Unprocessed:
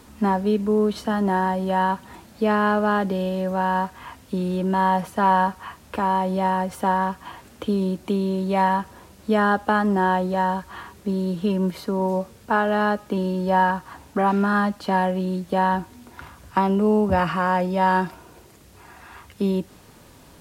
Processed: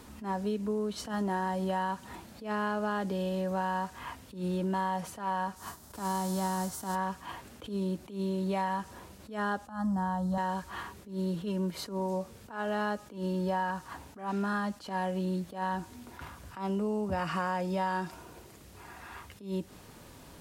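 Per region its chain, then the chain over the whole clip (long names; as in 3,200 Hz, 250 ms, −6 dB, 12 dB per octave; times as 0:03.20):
0:05.56–0:06.94: spectral envelope flattened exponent 0.6 + parametric band 2,500 Hz −13.5 dB 1.1 octaves + notch filter 520 Hz, Q 5.2
0:09.67–0:10.38: low-shelf EQ 410 Hz +11.5 dB + phaser with its sweep stopped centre 990 Hz, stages 4
whole clip: dynamic equaliser 6,900 Hz, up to +8 dB, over −48 dBFS, Q 0.78; downward compressor, threshold −26 dBFS; level that may rise only so fast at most 140 dB per second; level −2.5 dB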